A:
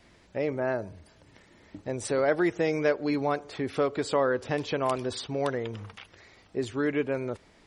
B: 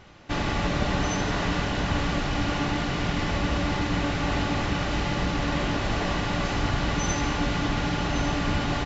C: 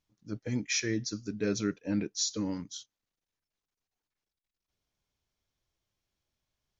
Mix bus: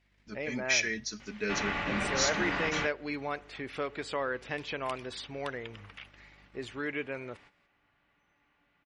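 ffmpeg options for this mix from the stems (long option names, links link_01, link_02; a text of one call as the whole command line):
ffmpeg -i stem1.wav -i stem2.wav -i stem3.wav -filter_complex "[0:a]volume=-10.5dB[link_01];[1:a]acrossover=split=2500[link_02][link_03];[link_03]acompressor=threshold=-47dB:ratio=4:attack=1:release=60[link_04];[link_02][link_04]amix=inputs=2:normalize=0,lowshelf=frequency=150:gain=-9,adelay=1200,volume=-8.5dB[link_05];[2:a]lowshelf=frequency=340:gain=-6,aecho=1:1:4.7:0.64,aeval=exprs='val(0)+0.00178*(sin(2*PI*50*n/s)+sin(2*PI*2*50*n/s)/2+sin(2*PI*3*50*n/s)/3+sin(2*PI*4*50*n/s)/4+sin(2*PI*5*50*n/s)/5)':channel_layout=same,volume=-4.5dB,asplit=2[link_06][link_07];[link_07]apad=whole_len=443223[link_08];[link_05][link_08]sidechaingate=range=-27dB:threshold=-51dB:ratio=16:detection=peak[link_09];[link_01][link_09][link_06]amix=inputs=3:normalize=0,agate=range=-12dB:threshold=-58dB:ratio=16:detection=peak,equalizer=frequency=2300:width=0.77:gain=11.5" out.wav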